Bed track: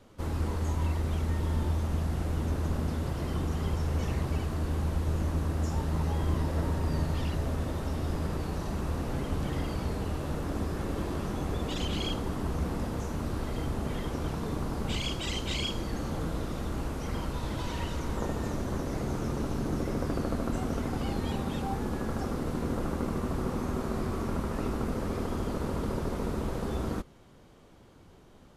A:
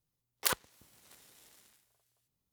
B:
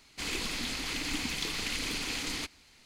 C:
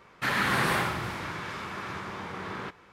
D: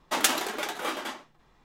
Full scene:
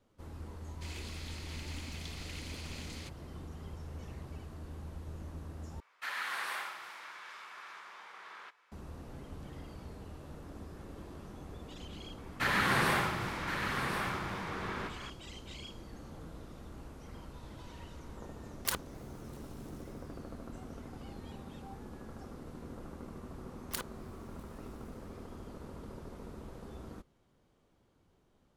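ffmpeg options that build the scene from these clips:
-filter_complex "[3:a]asplit=2[a][b];[1:a]asplit=2[c][d];[0:a]volume=-15dB[e];[a]highpass=890[f];[b]aecho=1:1:1071:0.422[g];[e]asplit=2[h][i];[h]atrim=end=5.804[j];[f]atrim=end=2.92,asetpts=PTS-STARTPTS,volume=-10dB[k];[i]atrim=start=8.716[l];[2:a]atrim=end=2.85,asetpts=PTS-STARTPTS,volume=-13dB,afade=t=in:d=0.004:c=hsin,afade=t=out:st=2.846:d=0.004:c=hsin,adelay=630[m];[g]atrim=end=2.92,asetpts=PTS-STARTPTS,volume=-3dB,afade=t=in:d=0.004:c=hsin,afade=t=out:st=2.916:d=0.004:c=hsin,adelay=12180[n];[c]atrim=end=2.52,asetpts=PTS-STARTPTS,volume=-3.5dB,afade=t=in:d=0.004:c=hsin,afade=t=out:st=2.516:d=0.004:c=hsin,adelay=18220[o];[d]atrim=end=2.52,asetpts=PTS-STARTPTS,volume=-9dB,afade=t=in:d=0.004:c=hsin,afade=t=out:st=2.516:d=0.004:c=hsin,adelay=23280[p];[j][k]acrossfade=d=0.004:c1=hsin:c2=hsin[q];[q][l]acrossfade=d=0.004:c1=hsin:c2=hsin[r];[r][m][n][o][p]amix=inputs=5:normalize=0"

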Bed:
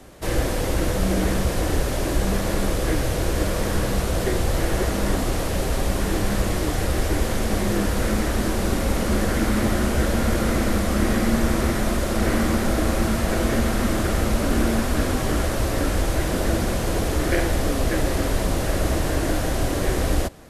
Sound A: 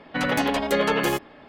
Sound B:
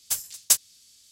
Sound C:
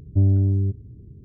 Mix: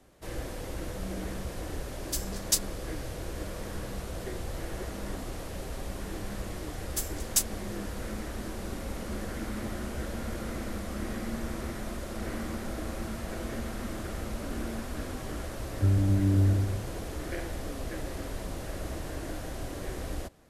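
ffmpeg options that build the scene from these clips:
-filter_complex "[2:a]asplit=2[a][b];[0:a]volume=-14.5dB[c];[a]equalizer=f=4.6k:w=1.5:g=7[d];[3:a]aecho=1:1:160|272|350.4|405.3|443.7:0.794|0.631|0.501|0.398|0.316[e];[d]atrim=end=1.11,asetpts=PTS-STARTPTS,volume=-9dB,afade=t=in:d=0.004:c=hsin,afade=t=out:st=1.106:d=0.004:c=hsin,adelay=2020[f];[b]atrim=end=1.11,asetpts=PTS-STARTPTS,volume=-6.5dB,afade=t=in:d=0.004:c=hsin,afade=t=out:st=1.106:d=0.004:c=hsin,adelay=6860[g];[e]atrim=end=1.24,asetpts=PTS-STARTPTS,volume=-6.5dB,afade=t=in:d=0.004:c=hsin,afade=t=out:st=1.236:d=0.004:c=hsin,adelay=15660[h];[c][f][g][h]amix=inputs=4:normalize=0"

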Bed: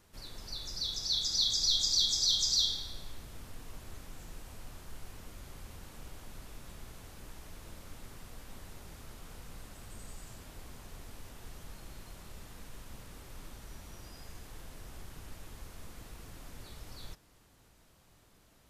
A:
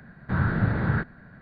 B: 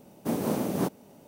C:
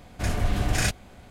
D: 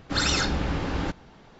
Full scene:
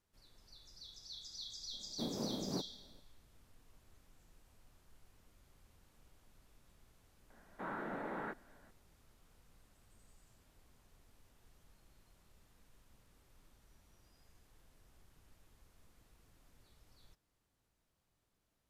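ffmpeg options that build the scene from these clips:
-filter_complex "[0:a]volume=-18.5dB[a];[2:a]tiltshelf=f=1.1k:g=4[b];[1:a]highpass=f=270:w=0.5412,highpass=f=270:w=1.3066,equalizer=f=590:t=q:w=4:g=3,equalizer=f=870:t=q:w=4:g=5,equalizer=f=1.6k:t=q:w=4:g=-7,lowpass=f=3.5k:w=0.5412,lowpass=f=3.5k:w=1.3066[c];[b]atrim=end=1.27,asetpts=PTS-STARTPTS,volume=-15.5dB,afade=t=in:d=0.004:c=hsin,afade=t=out:st=1.266:d=0.004:c=hsin,adelay=1730[d];[c]atrim=end=1.41,asetpts=PTS-STARTPTS,volume=-10.5dB,afade=t=in:d=0.004:c=hsin,afade=t=out:st=1.406:d=0.004:c=hsin,adelay=321930S[e];[a][d][e]amix=inputs=3:normalize=0"

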